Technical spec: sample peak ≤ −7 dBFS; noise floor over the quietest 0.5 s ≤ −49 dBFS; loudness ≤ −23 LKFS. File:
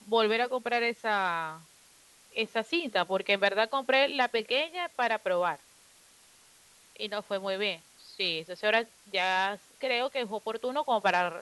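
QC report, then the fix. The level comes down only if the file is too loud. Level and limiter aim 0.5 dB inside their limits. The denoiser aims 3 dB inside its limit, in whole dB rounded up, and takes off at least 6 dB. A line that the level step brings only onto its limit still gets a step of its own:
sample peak −11.5 dBFS: in spec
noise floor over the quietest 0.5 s −59 dBFS: in spec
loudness −29.0 LKFS: in spec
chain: no processing needed

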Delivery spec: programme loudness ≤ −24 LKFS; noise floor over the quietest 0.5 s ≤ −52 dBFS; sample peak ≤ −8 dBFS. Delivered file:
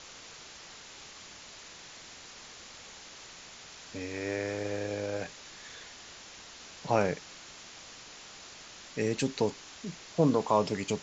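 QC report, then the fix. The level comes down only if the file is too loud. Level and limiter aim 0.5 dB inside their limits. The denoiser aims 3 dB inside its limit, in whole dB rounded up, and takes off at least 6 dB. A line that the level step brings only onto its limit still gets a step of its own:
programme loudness −32.0 LKFS: in spec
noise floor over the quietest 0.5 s −49 dBFS: out of spec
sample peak −12.0 dBFS: in spec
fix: broadband denoise 6 dB, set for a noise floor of −49 dBFS

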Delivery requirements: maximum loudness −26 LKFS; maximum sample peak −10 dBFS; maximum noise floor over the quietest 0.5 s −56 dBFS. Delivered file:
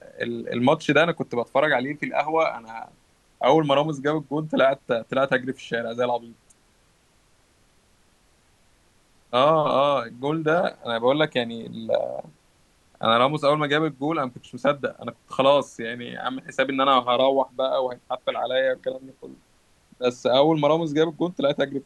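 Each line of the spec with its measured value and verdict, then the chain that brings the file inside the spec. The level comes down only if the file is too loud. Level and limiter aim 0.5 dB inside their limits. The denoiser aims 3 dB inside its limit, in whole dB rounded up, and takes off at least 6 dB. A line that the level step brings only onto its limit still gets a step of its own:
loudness −23.0 LKFS: out of spec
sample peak −5.0 dBFS: out of spec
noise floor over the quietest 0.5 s −61 dBFS: in spec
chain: level −3.5 dB
brickwall limiter −10.5 dBFS

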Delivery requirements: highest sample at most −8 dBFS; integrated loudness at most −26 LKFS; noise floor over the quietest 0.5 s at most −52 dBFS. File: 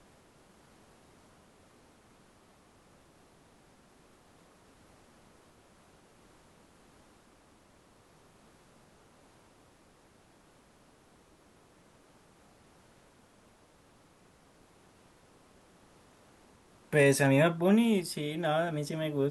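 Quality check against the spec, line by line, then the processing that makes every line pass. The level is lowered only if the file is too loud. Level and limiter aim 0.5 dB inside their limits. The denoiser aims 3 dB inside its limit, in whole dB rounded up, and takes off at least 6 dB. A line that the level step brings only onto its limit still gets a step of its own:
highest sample −12.0 dBFS: in spec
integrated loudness −27.5 LKFS: in spec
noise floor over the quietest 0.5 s −62 dBFS: in spec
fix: no processing needed

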